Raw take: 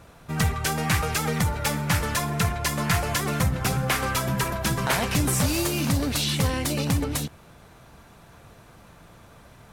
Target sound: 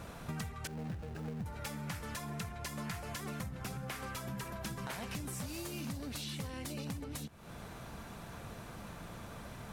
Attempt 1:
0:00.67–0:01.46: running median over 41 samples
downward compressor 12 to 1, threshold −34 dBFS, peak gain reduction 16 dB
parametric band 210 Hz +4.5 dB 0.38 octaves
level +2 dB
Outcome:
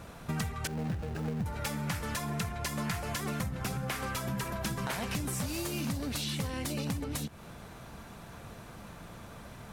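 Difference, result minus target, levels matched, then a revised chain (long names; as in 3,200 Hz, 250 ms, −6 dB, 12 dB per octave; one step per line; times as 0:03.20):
downward compressor: peak gain reduction −7 dB
0:00.67–0:01.46: running median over 41 samples
downward compressor 12 to 1, threshold −41.5 dBFS, peak gain reduction 22.5 dB
parametric band 210 Hz +4.5 dB 0.38 octaves
level +2 dB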